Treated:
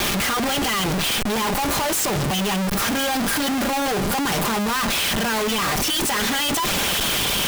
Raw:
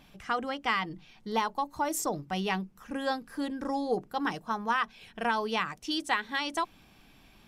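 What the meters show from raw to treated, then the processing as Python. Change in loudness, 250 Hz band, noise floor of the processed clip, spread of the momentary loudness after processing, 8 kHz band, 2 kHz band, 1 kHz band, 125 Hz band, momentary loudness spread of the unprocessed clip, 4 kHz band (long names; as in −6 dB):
+11.5 dB, +11.0 dB, −22 dBFS, 2 LU, +19.0 dB, +10.0 dB, +7.0 dB, +16.5 dB, 5 LU, +16.5 dB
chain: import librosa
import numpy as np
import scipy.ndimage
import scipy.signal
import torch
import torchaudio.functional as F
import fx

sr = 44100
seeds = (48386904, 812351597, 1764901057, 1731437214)

y = x + 0.5 * 10.0 ** (-29.0 / 20.0) * np.diff(np.sign(x), prepend=np.sign(x[:1]))
y = fx.recorder_agc(y, sr, target_db=-15.5, rise_db_per_s=23.0, max_gain_db=30)
y = scipy.signal.sosfilt(scipy.signal.butter(4, 83.0, 'highpass', fs=sr, output='sos'), y)
y = fx.peak_eq(y, sr, hz=3100.0, db=9.5, octaves=0.32)
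y = y + 0.65 * np.pad(y, (int(5.0 * sr / 1000.0), 0))[:len(y)]
y = fx.schmitt(y, sr, flips_db=-36.0)
y = y * librosa.db_to_amplitude(3.0)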